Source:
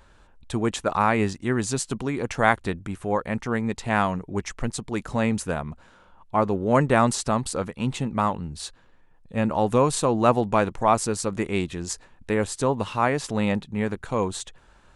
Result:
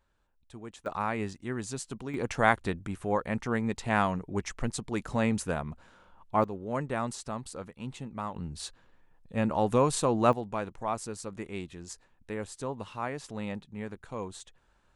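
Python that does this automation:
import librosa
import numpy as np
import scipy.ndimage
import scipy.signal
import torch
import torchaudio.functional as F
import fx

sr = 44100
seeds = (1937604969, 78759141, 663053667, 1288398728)

y = fx.gain(x, sr, db=fx.steps((0.0, -19.5), (0.86, -10.5), (2.14, -4.0), (6.44, -13.0), (8.36, -4.5), (10.33, -12.5)))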